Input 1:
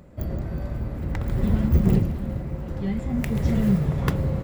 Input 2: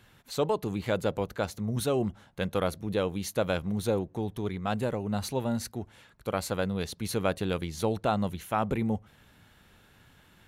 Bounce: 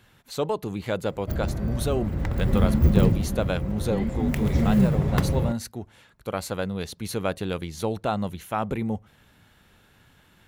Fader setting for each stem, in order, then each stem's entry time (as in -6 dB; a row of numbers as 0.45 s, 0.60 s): +0.5 dB, +1.0 dB; 1.10 s, 0.00 s